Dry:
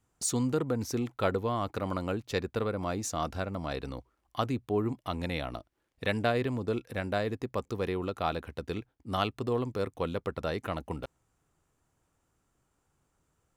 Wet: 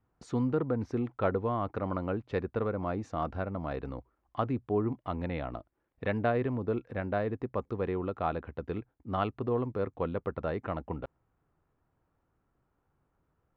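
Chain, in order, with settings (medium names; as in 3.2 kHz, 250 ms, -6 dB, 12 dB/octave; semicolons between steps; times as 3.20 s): low-pass 1.7 kHz 12 dB/octave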